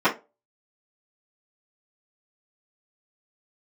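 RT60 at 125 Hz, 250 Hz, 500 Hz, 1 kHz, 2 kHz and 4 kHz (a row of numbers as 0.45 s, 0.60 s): 0.30 s, 0.25 s, 0.30 s, 0.25 s, 0.20 s, 0.15 s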